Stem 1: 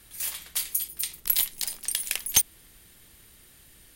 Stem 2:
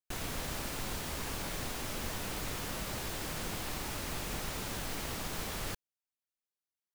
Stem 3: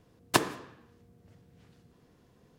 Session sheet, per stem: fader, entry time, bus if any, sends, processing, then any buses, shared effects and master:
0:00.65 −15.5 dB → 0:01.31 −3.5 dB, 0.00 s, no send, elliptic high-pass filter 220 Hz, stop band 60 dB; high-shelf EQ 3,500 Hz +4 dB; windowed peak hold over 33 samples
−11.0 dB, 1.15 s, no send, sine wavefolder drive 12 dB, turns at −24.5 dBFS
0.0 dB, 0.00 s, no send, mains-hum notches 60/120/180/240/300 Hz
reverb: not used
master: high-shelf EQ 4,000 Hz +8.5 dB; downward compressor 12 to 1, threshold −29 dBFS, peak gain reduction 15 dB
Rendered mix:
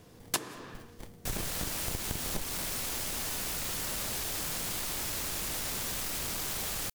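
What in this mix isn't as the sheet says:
stem 1 −15.5 dB → −24.0 dB
stem 3 0.0 dB → +7.5 dB

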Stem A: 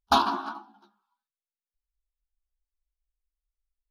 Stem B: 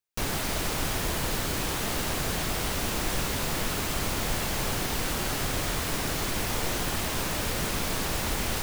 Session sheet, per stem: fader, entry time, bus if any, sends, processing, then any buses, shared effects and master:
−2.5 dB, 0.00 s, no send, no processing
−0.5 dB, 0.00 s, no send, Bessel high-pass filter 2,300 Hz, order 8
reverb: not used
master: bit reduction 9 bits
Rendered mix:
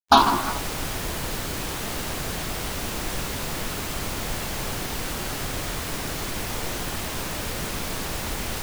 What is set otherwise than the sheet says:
stem A −2.5 dB → +6.5 dB
stem B: missing Bessel high-pass filter 2,300 Hz, order 8

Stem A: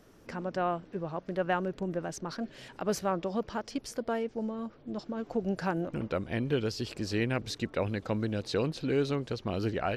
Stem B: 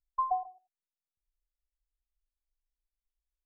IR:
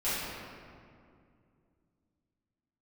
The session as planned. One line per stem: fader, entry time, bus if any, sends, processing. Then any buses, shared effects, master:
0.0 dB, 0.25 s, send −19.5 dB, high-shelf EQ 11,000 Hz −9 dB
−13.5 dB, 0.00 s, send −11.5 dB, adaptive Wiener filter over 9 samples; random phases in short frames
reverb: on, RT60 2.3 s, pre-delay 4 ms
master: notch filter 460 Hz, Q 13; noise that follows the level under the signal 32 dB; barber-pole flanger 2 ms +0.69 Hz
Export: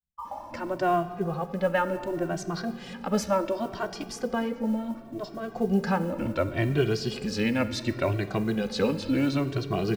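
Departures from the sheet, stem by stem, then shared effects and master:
stem A 0.0 dB → +7.5 dB
stem B −13.5 dB → −4.5 dB

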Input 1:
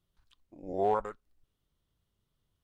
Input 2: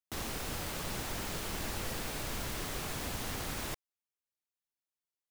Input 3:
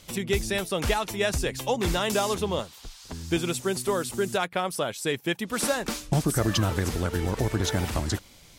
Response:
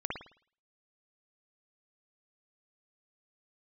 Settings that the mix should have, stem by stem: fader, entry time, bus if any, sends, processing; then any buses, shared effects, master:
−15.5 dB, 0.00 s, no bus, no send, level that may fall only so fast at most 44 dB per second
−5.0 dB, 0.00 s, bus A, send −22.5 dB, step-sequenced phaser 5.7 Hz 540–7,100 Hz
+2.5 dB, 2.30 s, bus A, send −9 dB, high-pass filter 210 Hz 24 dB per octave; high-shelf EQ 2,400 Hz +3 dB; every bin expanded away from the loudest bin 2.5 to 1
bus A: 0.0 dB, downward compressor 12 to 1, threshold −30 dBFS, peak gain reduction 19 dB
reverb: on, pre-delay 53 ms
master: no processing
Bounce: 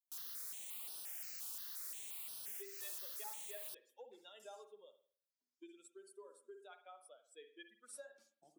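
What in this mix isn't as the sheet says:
stem 1 −15.5 dB → −27.5 dB
stem 3 +2.5 dB → −8.5 dB
master: extra first difference

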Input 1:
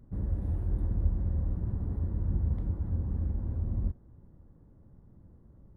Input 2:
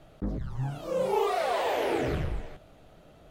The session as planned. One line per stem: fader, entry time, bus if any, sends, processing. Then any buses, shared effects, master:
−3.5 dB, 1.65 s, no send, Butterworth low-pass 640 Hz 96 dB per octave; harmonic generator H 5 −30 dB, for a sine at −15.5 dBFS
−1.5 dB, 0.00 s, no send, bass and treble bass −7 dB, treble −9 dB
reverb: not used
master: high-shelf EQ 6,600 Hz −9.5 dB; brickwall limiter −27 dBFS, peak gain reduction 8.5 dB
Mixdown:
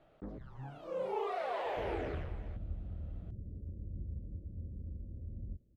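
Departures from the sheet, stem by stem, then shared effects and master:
stem 1 −3.5 dB → −13.5 dB
stem 2 −1.5 dB → −8.5 dB

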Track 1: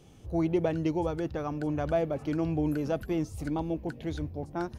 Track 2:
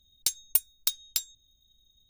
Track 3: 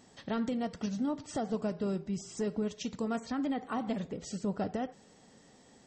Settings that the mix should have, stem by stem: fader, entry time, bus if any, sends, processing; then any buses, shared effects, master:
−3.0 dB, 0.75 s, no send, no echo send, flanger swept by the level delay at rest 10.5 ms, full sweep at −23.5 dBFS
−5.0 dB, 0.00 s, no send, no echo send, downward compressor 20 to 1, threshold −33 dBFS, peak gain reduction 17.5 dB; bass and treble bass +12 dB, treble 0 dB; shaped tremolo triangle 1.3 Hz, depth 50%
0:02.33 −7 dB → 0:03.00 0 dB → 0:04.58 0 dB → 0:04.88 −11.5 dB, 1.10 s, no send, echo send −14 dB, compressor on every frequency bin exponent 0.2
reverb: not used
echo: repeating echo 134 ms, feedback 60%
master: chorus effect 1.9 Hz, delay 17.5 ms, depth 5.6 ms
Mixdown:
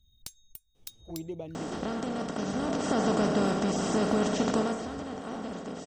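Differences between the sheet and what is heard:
stem 1 −3.0 dB → −10.5 dB
stem 3: entry 1.10 s → 1.55 s
master: missing chorus effect 1.9 Hz, delay 17.5 ms, depth 5.6 ms

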